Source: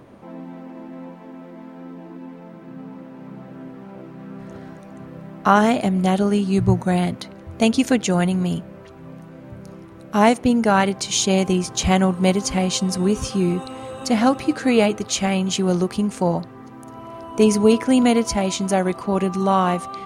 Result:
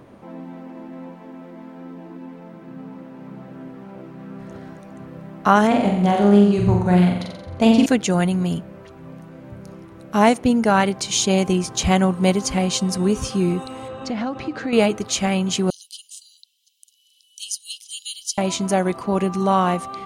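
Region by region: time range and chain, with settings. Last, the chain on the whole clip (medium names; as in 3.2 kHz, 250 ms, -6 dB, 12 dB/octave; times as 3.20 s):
5.67–7.86 s: treble shelf 4.8 kHz -10.5 dB + flutter echo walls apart 7.6 m, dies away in 0.78 s + loudspeaker Doppler distortion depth 0.1 ms
13.88–14.73 s: Gaussian low-pass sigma 1.6 samples + compression 10:1, threshold -21 dBFS
15.70–18.38 s: steep high-pass 3 kHz 72 dB/octave + comb 1 ms, depth 39%
whole clip: none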